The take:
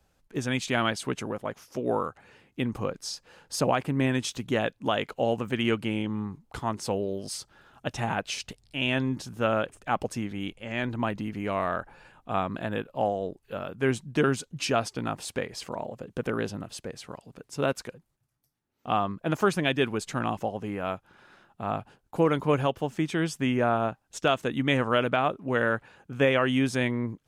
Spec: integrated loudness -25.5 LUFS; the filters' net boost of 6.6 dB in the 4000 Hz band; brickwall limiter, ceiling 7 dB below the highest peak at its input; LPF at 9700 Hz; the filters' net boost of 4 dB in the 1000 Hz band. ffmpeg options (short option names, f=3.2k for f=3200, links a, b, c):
-af "lowpass=9.7k,equalizer=f=1k:t=o:g=5,equalizer=f=4k:t=o:g=9,volume=3dB,alimiter=limit=-11dB:level=0:latency=1"